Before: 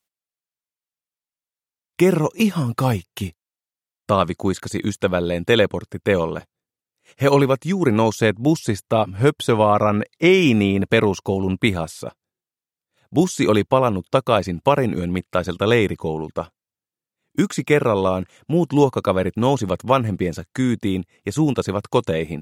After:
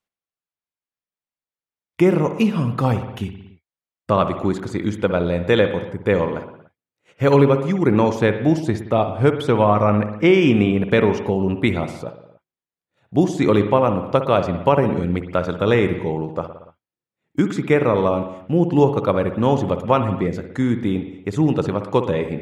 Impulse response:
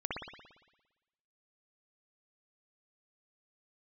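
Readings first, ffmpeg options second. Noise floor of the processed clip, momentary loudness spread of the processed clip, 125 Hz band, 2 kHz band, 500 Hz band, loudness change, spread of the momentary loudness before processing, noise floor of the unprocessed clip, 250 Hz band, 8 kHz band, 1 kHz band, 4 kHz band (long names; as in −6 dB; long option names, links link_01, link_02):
below −85 dBFS, 9 LU, +1.5 dB, −1.5 dB, +1.0 dB, +0.5 dB, 9 LU, below −85 dBFS, +1.0 dB, can't be measured, 0.0 dB, −4.5 dB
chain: -filter_complex "[0:a]lowpass=frequency=2200:poles=1,asplit=2[link_01][link_02];[1:a]atrim=start_sample=2205,afade=type=out:start_time=0.37:duration=0.01,atrim=end_sample=16758[link_03];[link_02][link_03]afir=irnorm=-1:irlink=0,volume=-9.5dB[link_04];[link_01][link_04]amix=inputs=2:normalize=0,volume=-1.5dB"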